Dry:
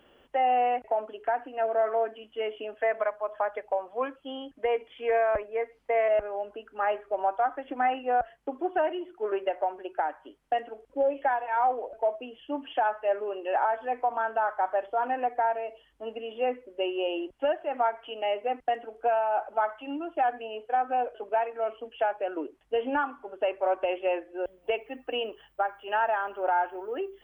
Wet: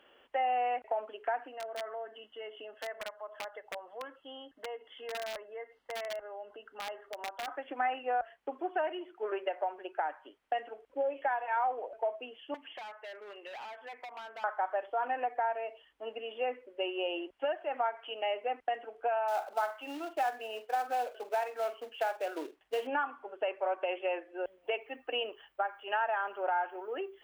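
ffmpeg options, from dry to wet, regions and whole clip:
-filter_complex "[0:a]asettb=1/sr,asplit=3[a][b][c];[a]atrim=end=1.524[d];[b]atrim=start=1.52:end=7.48,asetpts=PTS-STARTPTS,afade=t=in:d=0.004:c=qsin,afade=t=out:st=5.956:d=0.004:c=qsin,acompressor=threshold=-43dB:ratio=2:attack=3.2:release=140:knee=1:detection=peak,asuperstop=centerf=2400:order=8:qfactor=6.4,aeval=exprs='(mod(29.9*val(0)+1,2)-1)/29.9':c=same[e];[c]atrim=start=7.476[f];[d][e]acrossfade=d=0.004:c1=hsin:c2=qsin[g];[g][f]acrossfade=d=0.004:c1=qsin:c2=hsin,asettb=1/sr,asplit=3[h][i][j];[h]atrim=end=12.544[k];[i]atrim=start=12.54:end=14.44,asetpts=PTS-STARTPTS,afade=t=in:d=0.004:c=qsin,afade=t=out:st=1.896:d=0.004:c=qsin,equalizer=f=2.1k:t=o:w=0.2:g=7.5,asoftclip=type=hard:threshold=-29.5dB,acrossover=split=1200|2800[l][m][n];[l]acompressor=threshold=-45dB:ratio=4[o];[m]acompressor=threshold=-52dB:ratio=4[p];[n]acompressor=threshold=-56dB:ratio=4[q];[o][p][q]amix=inputs=3:normalize=0[r];[j]atrim=start=14.436[s];[k][r]acrossfade=d=0.004:c1=hsin:c2=qsin[t];[t][s]acrossfade=d=0.004:c1=qsin:c2=hsin,asettb=1/sr,asplit=3[u][v][w];[u]atrim=end=19.284[x];[v]atrim=start=19.28:end=22.87,asetpts=PTS-STARTPTS,afade=t=in:d=0.004:c=qsin,afade=t=out:st=3.586:d=0.004:c=qsin,acrusher=bits=4:mode=log:mix=0:aa=0.000001,asplit=2[y][z];[z]adelay=45,volume=-13dB[aa];[y][aa]amix=inputs=2:normalize=0,atrim=end_sample=158319[ab];[w]atrim=start=22.866[ac];[x][ab]acrossfade=d=0.004:c1=hsin:c2=qsin[ad];[ad][ac]acrossfade=d=0.004:c1=qsin:c2=hsin,bass=f=250:g=-13,treble=f=4k:g=-14,acompressor=threshold=-28dB:ratio=2,highshelf=f=2k:g=10,volume=-3.5dB"

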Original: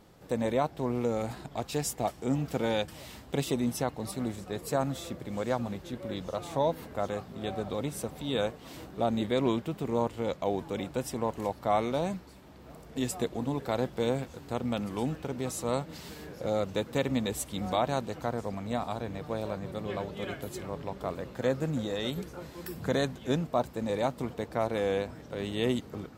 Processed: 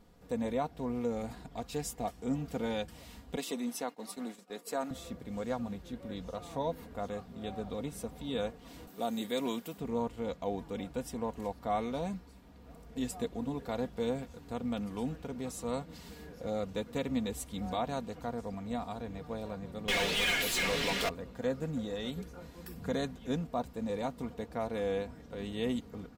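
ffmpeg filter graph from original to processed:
-filter_complex "[0:a]asettb=1/sr,asplit=3[a][b][c];[a]atrim=end=3.364[d];[b]atrim=start=3.36:end=4.91,asetpts=PTS-STARTPTS,afade=t=in:d=0.004:c=qsin,afade=t=out:st=1.546:d=0.004:c=qsin,highpass=f=220:w=0.5412,highpass=f=220:w=1.3066,agate=range=-33dB:threshold=-40dB:ratio=3:release=100:detection=peak,tiltshelf=f=650:g=-3[e];[c]atrim=start=4.906[f];[d][e]acrossfade=d=0.004:c1=hsin:c2=qsin[g];[g][f]acrossfade=d=0.004:c1=qsin:c2=hsin,asettb=1/sr,asplit=3[h][i][j];[h]atrim=end=8.874[k];[i]atrim=start=8.87:end=9.78,asetpts=PTS-STARTPTS,afade=t=in:d=0.004:c=qsin,afade=t=out:st=0.906:d=0.004:c=qsin,highpass=210,aemphasis=mode=production:type=75fm[l];[j]atrim=start=9.776[m];[k][l]acrossfade=d=0.004:c1=hsin:c2=qsin[n];[n][m]acrossfade=d=0.004:c1=qsin:c2=hsin,asettb=1/sr,asplit=3[o][p][q];[o]atrim=end=19.884[r];[p]atrim=start=19.88:end=21.09,asetpts=PTS-STARTPTS,afade=t=in:d=0.004:c=qsin,afade=t=out:st=1.206:d=0.004:c=qsin,highshelf=f=1.6k:t=q:w=1.5:g=12.5,asplit=2[s][t];[t]highpass=f=720:p=1,volume=31dB,asoftclip=type=tanh:threshold=-16.5dB[u];[s][u]amix=inputs=2:normalize=0,lowpass=f=5k:p=1,volume=-6dB[v];[q]atrim=start=21.086[w];[r][v]acrossfade=d=0.004:c1=hsin:c2=qsin[x];[x][w]acrossfade=d=0.004:c1=qsin:c2=hsin,lowshelf=f=110:g=10.5,aecho=1:1:4.2:0.5,volume=-7.5dB"

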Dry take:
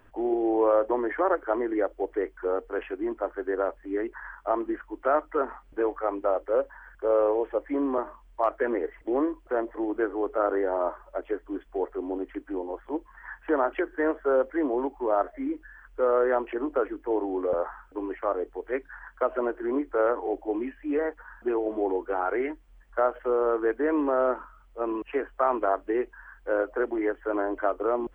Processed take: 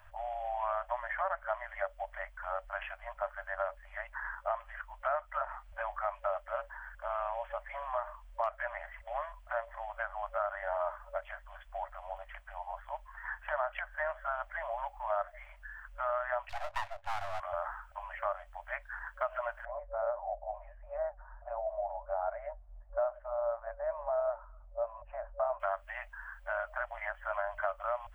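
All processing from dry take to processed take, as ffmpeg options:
-filter_complex "[0:a]asettb=1/sr,asplit=3[a][b][c];[a]atrim=end=16.494[d];[b]atrim=start=16.49:end=17.4,asetpts=PTS-STARTPTS,afade=t=in:d=0.004:c=qsin,afade=t=out:st=0.906:d=0.004:c=qsin,lowpass=f=1.1k:p=1,aeval=exprs='abs(val(0))':c=same[e];[c]atrim=start=17.396[f];[d][e]acrossfade=d=0.004:c1=hsin:c2=qsin[g];[g][f]acrossfade=d=0.004:c1=qsin:c2=hsin,asettb=1/sr,asplit=3[h][i][j];[h]atrim=end=19.654[k];[i]atrim=start=19.65:end=25.6,asetpts=PTS-STARTPTS,afade=t=in:d=0.004:c=qsin,afade=t=out:st=5.946:d=0.004:c=qsin,acontrast=88,flanger=delay=2.6:depth=5.1:regen=81:speed=1.5:shape=triangular,lowpass=f=540:t=q:w=2[l];[j]atrim=start=25.596[m];[k][l]acrossfade=d=0.004:c1=hsin:c2=qsin[n];[n][m]acrossfade=d=0.004:c1=qsin:c2=hsin,afftfilt=real='re*(1-between(b*sr/4096,100,570))':imag='im*(1-between(b*sr/4096,100,570))':win_size=4096:overlap=0.75,acrossover=split=480|1200[o][p][q];[o]acompressor=threshold=-43dB:ratio=4[r];[p]acompressor=threshold=-41dB:ratio=4[s];[q]acompressor=threshold=-38dB:ratio=4[t];[r][s][t]amix=inputs=3:normalize=0,volume=1.5dB"

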